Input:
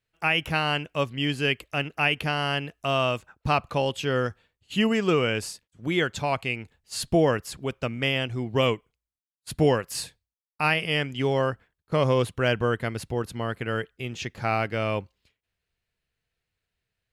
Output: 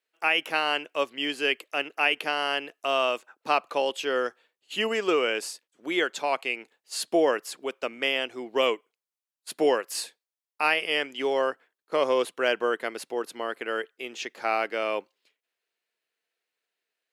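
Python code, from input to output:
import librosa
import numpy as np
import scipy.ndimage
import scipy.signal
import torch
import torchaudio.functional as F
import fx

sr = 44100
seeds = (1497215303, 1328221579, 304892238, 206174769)

y = scipy.signal.sosfilt(scipy.signal.butter(4, 320.0, 'highpass', fs=sr, output='sos'), x)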